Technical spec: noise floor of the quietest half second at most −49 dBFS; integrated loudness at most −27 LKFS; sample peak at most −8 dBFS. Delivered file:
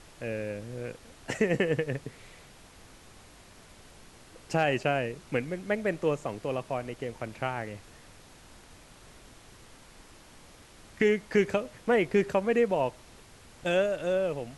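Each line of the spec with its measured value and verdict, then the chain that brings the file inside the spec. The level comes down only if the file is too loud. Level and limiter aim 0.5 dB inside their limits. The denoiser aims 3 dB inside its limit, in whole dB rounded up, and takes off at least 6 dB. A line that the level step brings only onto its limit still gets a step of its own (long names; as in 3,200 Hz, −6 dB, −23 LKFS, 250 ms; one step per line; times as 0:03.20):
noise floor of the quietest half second −53 dBFS: in spec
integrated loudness −29.5 LKFS: in spec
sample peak −10.5 dBFS: in spec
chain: no processing needed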